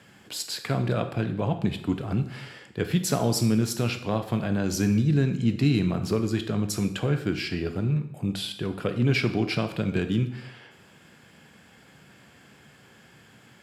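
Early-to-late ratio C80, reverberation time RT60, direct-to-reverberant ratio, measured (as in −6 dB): 13.5 dB, 0.70 s, 7.5 dB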